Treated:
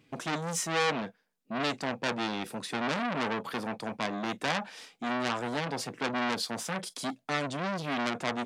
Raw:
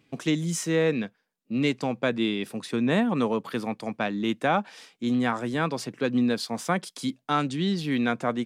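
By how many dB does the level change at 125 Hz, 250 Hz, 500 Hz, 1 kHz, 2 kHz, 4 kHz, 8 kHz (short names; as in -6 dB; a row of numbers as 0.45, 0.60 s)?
-8.5, -9.5, -6.5, -2.0, -1.5, -1.0, -0.5 dB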